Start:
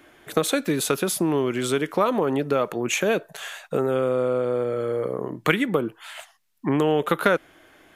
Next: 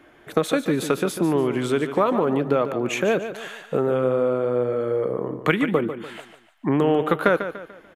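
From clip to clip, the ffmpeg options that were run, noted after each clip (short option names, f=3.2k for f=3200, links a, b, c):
-filter_complex "[0:a]highshelf=f=3.6k:g=-11,asplit=2[a][b];[b]aecho=0:1:146|292|438|584:0.299|0.116|0.0454|0.0177[c];[a][c]amix=inputs=2:normalize=0,volume=1.5dB"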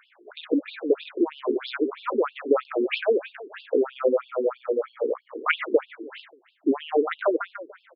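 -af "afftfilt=real='re*between(b*sr/1024,320*pow(3800/320,0.5+0.5*sin(2*PI*3.1*pts/sr))/1.41,320*pow(3800/320,0.5+0.5*sin(2*PI*3.1*pts/sr))*1.41)':imag='im*between(b*sr/1024,320*pow(3800/320,0.5+0.5*sin(2*PI*3.1*pts/sr))/1.41,320*pow(3800/320,0.5+0.5*sin(2*PI*3.1*pts/sr))*1.41)':win_size=1024:overlap=0.75,volume=3dB"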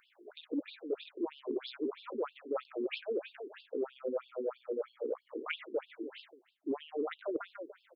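-af "equalizer=f=1.4k:t=o:w=2.4:g=-13.5,areverse,acompressor=threshold=-32dB:ratio=12,areverse"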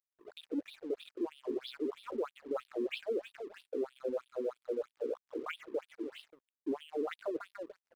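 -filter_complex "[0:a]acrossover=split=140[a][b];[b]alimiter=level_in=4.5dB:limit=-24dB:level=0:latency=1:release=198,volume=-4.5dB[c];[a][c]amix=inputs=2:normalize=0,aeval=exprs='sgn(val(0))*max(abs(val(0))-0.001,0)':c=same,volume=2dB"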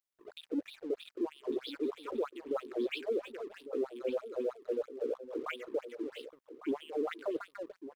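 -af "aecho=1:1:1152:0.224,volume=1.5dB"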